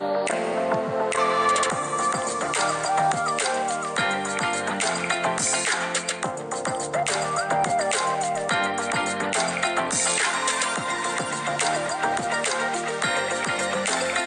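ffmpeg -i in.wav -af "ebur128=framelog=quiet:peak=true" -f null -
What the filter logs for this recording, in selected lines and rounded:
Integrated loudness:
  I:         -23.7 LUFS
  Threshold: -33.7 LUFS
Loudness range:
  LRA:         1.4 LU
  Threshold: -43.7 LUFS
  LRA low:   -24.4 LUFS
  LRA high:  -23.0 LUFS
True peak:
  Peak:      -10.0 dBFS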